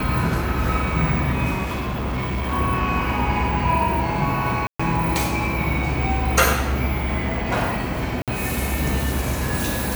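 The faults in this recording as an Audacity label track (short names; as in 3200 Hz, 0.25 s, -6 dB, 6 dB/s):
1.630000	2.540000	clipped -21 dBFS
4.670000	4.790000	gap 0.125 s
8.220000	8.280000	gap 57 ms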